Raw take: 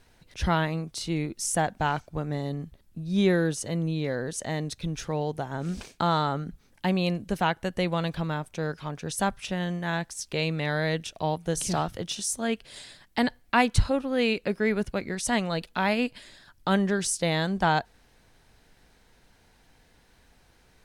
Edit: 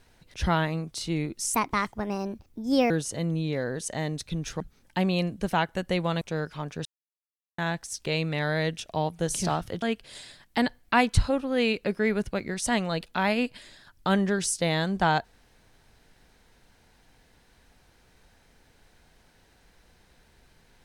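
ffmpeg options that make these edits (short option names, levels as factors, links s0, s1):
-filter_complex "[0:a]asplit=8[s0][s1][s2][s3][s4][s5][s6][s7];[s0]atrim=end=1.544[s8];[s1]atrim=start=1.54:end=3.42,asetpts=PTS-STARTPTS,asetrate=60858,aresample=44100,atrim=end_sample=60078,asetpts=PTS-STARTPTS[s9];[s2]atrim=start=3.416:end=5.122[s10];[s3]atrim=start=6.478:end=8.092[s11];[s4]atrim=start=8.478:end=9.12,asetpts=PTS-STARTPTS,afade=t=out:st=0.638:d=0.004:c=hsin[s12];[s5]atrim=start=9.12:end=9.85,asetpts=PTS-STARTPTS,volume=0[s13];[s6]atrim=start=9.85:end=12.092,asetpts=PTS-STARTPTS,afade=t=in:d=0.004:c=hsin[s14];[s7]atrim=start=12.428[s15];[s8][s9]acrossfade=d=0.004:c1=hsin:c2=hsin[s16];[s16][s10]acrossfade=d=0.004:c1=hsin:c2=hsin[s17];[s17][s11]acrossfade=d=0.004:c1=hsin:c2=hsin[s18];[s12][s13][s14]concat=n=3:v=0:a=1[s19];[s18][s19]acrossfade=d=0.004:c1=hsin:c2=hsin[s20];[s20][s15]acrossfade=d=0.004:c1=hsin:c2=hsin"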